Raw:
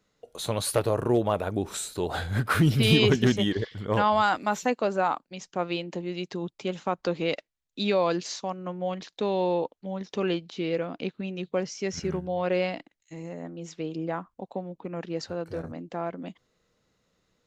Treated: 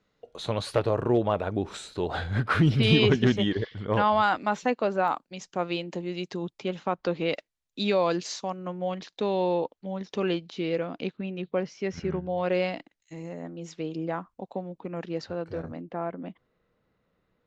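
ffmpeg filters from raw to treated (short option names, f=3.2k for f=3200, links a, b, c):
-af "asetnsamples=n=441:p=0,asendcmd='5.08 lowpass f 11000;6.6 lowpass f 4500;7.35 lowpass f 12000;8.84 lowpass f 6800;11.17 lowpass f 3200;12.38 lowpass f 7700;15.18 lowpass f 4300;15.81 lowpass f 2200',lowpass=4.3k"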